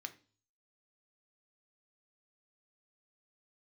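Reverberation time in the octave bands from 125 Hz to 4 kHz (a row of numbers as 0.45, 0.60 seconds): 0.70, 0.50, 0.45, 0.35, 0.35, 0.45 seconds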